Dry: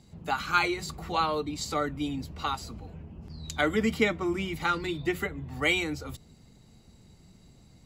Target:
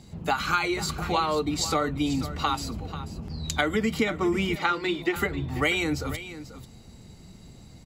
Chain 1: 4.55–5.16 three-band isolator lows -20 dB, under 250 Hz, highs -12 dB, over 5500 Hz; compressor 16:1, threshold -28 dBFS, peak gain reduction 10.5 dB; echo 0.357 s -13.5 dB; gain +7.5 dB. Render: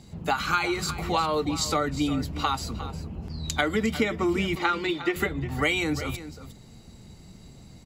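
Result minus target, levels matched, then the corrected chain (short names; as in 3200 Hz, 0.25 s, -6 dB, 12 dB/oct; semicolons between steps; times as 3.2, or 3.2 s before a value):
echo 0.132 s early
4.55–5.16 three-band isolator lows -20 dB, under 250 Hz, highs -12 dB, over 5500 Hz; compressor 16:1, threshold -28 dBFS, peak gain reduction 10.5 dB; echo 0.489 s -13.5 dB; gain +7.5 dB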